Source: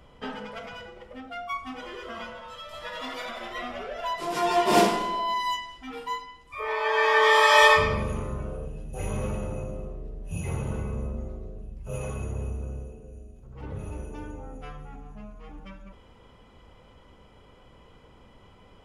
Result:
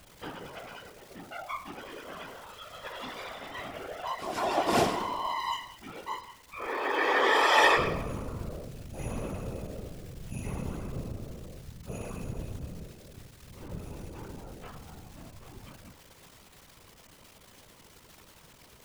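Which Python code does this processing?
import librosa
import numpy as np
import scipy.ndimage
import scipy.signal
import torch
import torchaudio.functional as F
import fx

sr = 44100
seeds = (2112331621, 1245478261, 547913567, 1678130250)

y = fx.dmg_crackle(x, sr, seeds[0], per_s=410.0, level_db=-35.0)
y = fx.whisperise(y, sr, seeds[1])
y = y * librosa.db_to_amplitude(-5.0)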